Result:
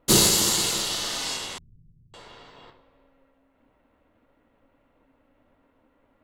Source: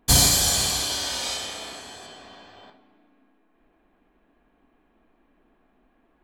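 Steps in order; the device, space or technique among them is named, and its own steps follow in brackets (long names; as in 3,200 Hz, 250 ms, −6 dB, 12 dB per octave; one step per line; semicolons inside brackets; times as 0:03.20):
alien voice (ring modulation 270 Hz; flanger 1.6 Hz, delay 6.1 ms, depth 4.8 ms, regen −55%)
0:01.58–0:02.14: inverse Chebyshev low-pass filter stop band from 930 Hz, stop band 80 dB
level +6 dB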